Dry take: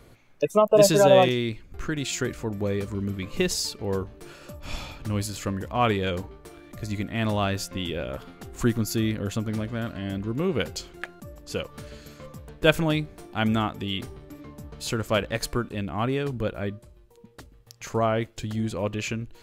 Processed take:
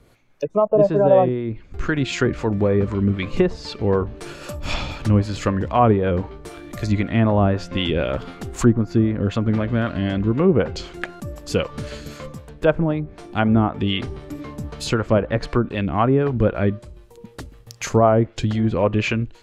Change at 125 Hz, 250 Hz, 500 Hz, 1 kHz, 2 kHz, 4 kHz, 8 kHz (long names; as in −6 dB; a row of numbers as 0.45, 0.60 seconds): +8.0, +7.5, +5.0, +5.0, +3.0, +0.5, −4.0 decibels